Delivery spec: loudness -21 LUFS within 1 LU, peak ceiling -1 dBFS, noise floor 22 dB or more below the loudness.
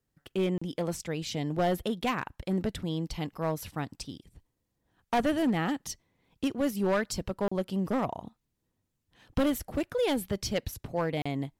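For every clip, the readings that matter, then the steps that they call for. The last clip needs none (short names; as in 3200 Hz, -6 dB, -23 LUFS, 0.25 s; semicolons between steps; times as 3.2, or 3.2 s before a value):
clipped 1.7%; flat tops at -21.5 dBFS; dropouts 3; longest dropout 35 ms; loudness -31.5 LUFS; peak -21.5 dBFS; loudness target -21.0 LUFS
-> clip repair -21.5 dBFS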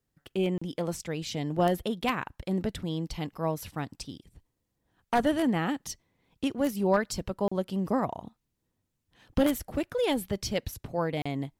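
clipped 0.0%; dropouts 3; longest dropout 35 ms
-> interpolate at 0.58/7.48/11.22, 35 ms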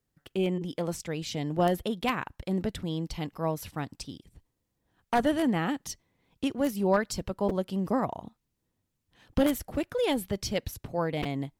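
dropouts 0; loudness -30.5 LUFS; peak -12.5 dBFS; loudness target -21.0 LUFS
-> gain +9.5 dB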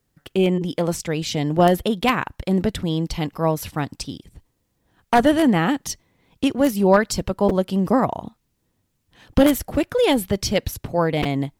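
loudness -21.0 LUFS; peak -3.0 dBFS; noise floor -71 dBFS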